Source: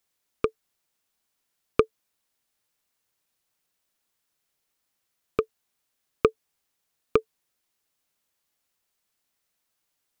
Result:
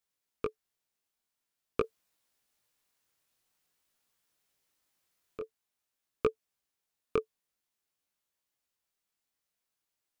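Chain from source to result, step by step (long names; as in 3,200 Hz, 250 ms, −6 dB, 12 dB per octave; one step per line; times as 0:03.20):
0:01.80–0:05.40: compressor whose output falls as the input rises −29 dBFS, ratio −1
chorus effect 0.47 Hz, delay 16 ms, depth 7.5 ms
level −5 dB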